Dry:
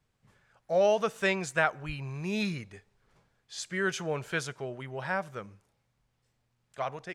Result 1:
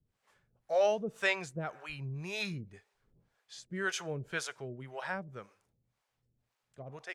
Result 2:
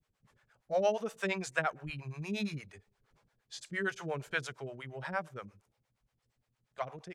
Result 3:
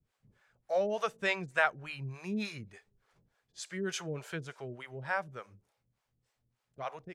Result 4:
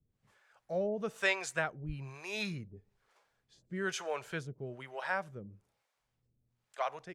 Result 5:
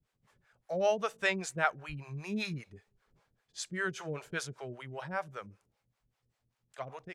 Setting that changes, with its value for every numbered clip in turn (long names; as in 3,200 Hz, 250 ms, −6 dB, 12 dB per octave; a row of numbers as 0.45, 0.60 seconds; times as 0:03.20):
two-band tremolo in antiphase, speed: 1.9, 8.6, 3.4, 1.1, 5.1 Hertz